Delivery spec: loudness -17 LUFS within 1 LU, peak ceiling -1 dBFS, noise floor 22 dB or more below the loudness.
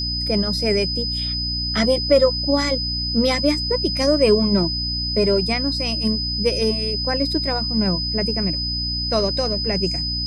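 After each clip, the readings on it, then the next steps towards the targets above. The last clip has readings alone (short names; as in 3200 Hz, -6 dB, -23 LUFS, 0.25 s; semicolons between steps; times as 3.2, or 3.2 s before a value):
hum 60 Hz; harmonics up to 300 Hz; hum level -26 dBFS; steady tone 5000 Hz; tone level -23 dBFS; loudness -19.5 LUFS; peak -4.0 dBFS; loudness target -17.0 LUFS
-> de-hum 60 Hz, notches 5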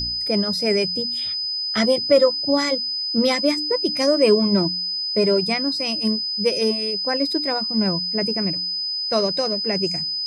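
hum none; steady tone 5000 Hz; tone level -23 dBFS
-> notch 5000 Hz, Q 30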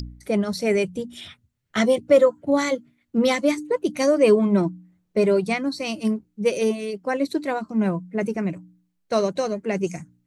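steady tone none; loudness -22.5 LUFS; peak -5.5 dBFS; loudness target -17.0 LUFS
-> gain +5.5 dB; limiter -1 dBFS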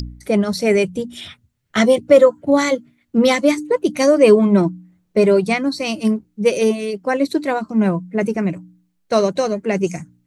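loudness -17.0 LUFS; peak -1.0 dBFS; noise floor -66 dBFS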